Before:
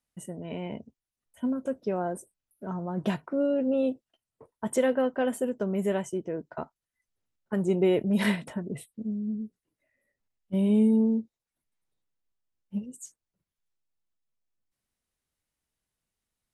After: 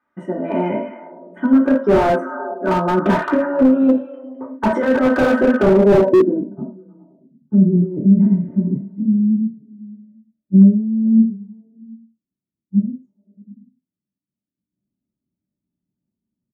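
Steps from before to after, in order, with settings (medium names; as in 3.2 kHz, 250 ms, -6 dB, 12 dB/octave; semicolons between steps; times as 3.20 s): high-pass 74 Hz 12 dB/octave; treble shelf 5.4 kHz +10 dB; comb 3.3 ms, depth 53%; compressor with a negative ratio -25 dBFS, ratio -0.5; repeats whose band climbs or falls 104 ms, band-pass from 3.7 kHz, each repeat -0.7 oct, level -6 dB; low-pass sweep 1.5 kHz -> 170 Hz, 5.57–6.48 s; reverberation, pre-delay 3 ms, DRR -1.5 dB; slew-rate limiter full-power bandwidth 130 Hz; trim +1.5 dB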